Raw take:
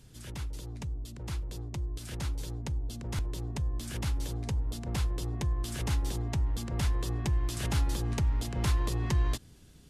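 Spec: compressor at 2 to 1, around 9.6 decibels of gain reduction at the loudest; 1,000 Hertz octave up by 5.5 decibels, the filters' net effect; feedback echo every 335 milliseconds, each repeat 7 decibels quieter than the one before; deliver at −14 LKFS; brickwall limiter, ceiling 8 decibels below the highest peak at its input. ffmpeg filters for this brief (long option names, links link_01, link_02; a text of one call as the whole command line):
ffmpeg -i in.wav -af "equalizer=frequency=1000:width_type=o:gain=6.5,acompressor=threshold=-41dB:ratio=2,alimiter=level_in=8.5dB:limit=-24dB:level=0:latency=1,volume=-8.5dB,aecho=1:1:335|670|1005|1340|1675:0.447|0.201|0.0905|0.0407|0.0183,volume=27dB" out.wav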